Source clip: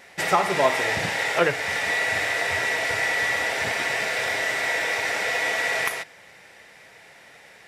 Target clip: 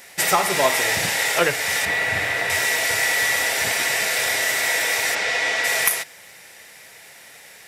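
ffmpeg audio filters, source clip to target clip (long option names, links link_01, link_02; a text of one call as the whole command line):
ffmpeg -i in.wav -filter_complex "[0:a]asettb=1/sr,asplit=3[link_01][link_02][link_03];[link_01]atrim=end=1.854[link_04];[link_02]atrim=start=1.85:end=2.5,asetpts=PTS-STARTPTS,afade=type=in:duration=0.004:curve=qsin,afade=type=out:start_time=0.646:duration=0.004:curve=qsin,bass=frequency=250:gain=8,treble=frequency=4000:gain=-12[link_05];[link_03]atrim=start=2.496[link_06];[link_04][link_05]acrossfade=duration=0.004:curve1=hsin:curve2=qsin[link_07];[link_07][link_06]acrossfade=duration=0.004:curve1=qsin:curve2=hsin,asplit=3[link_08][link_09][link_10];[link_08]afade=type=out:start_time=5.14:duration=0.02[link_11];[link_09]lowpass=5100,afade=type=in:start_time=5.14:duration=0.02,afade=type=out:start_time=5.63:duration=0.02[link_12];[link_10]afade=type=in:start_time=5.63:duration=0.02[link_13];[link_11][link_12][link_13]amix=inputs=3:normalize=0,aemphasis=mode=production:type=75fm,aeval=exprs='0.75*(cos(1*acos(clip(val(0)/0.75,-1,1)))-cos(1*PI/2))+0.0075*(cos(4*acos(clip(val(0)/0.75,-1,1)))-cos(4*PI/2))':channel_layout=same,volume=1dB" out.wav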